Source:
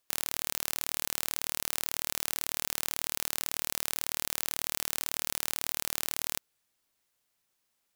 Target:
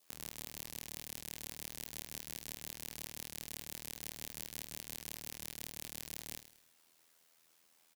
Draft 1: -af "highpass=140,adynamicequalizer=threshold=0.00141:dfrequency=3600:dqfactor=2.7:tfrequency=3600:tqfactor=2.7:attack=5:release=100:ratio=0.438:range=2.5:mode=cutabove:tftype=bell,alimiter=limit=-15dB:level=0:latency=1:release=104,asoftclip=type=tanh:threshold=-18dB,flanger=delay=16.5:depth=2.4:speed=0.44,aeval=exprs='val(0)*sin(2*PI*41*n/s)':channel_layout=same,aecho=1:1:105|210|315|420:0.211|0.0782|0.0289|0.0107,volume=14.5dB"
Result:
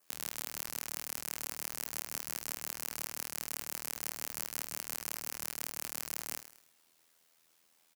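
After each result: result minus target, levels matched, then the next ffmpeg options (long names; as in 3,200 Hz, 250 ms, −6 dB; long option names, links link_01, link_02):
soft clipping: distortion −11 dB; 4,000 Hz band −3.0 dB
-af "highpass=140,adynamicequalizer=threshold=0.00141:dfrequency=3600:dqfactor=2.7:tfrequency=3600:tqfactor=2.7:attack=5:release=100:ratio=0.438:range=2.5:mode=cutabove:tftype=bell,alimiter=limit=-15dB:level=0:latency=1:release=104,asoftclip=type=tanh:threshold=-26dB,flanger=delay=16.5:depth=2.4:speed=0.44,aeval=exprs='val(0)*sin(2*PI*41*n/s)':channel_layout=same,aecho=1:1:105|210|315|420:0.211|0.0782|0.0289|0.0107,volume=14.5dB"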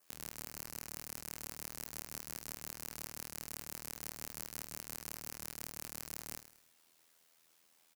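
4,000 Hz band −3.0 dB
-af "highpass=140,adynamicequalizer=threshold=0.00141:dfrequency=1500:dqfactor=2.7:tfrequency=1500:tqfactor=2.7:attack=5:release=100:ratio=0.438:range=2.5:mode=cutabove:tftype=bell,alimiter=limit=-15dB:level=0:latency=1:release=104,asoftclip=type=tanh:threshold=-26dB,flanger=delay=16.5:depth=2.4:speed=0.44,aeval=exprs='val(0)*sin(2*PI*41*n/s)':channel_layout=same,aecho=1:1:105|210|315|420:0.211|0.0782|0.0289|0.0107,volume=14.5dB"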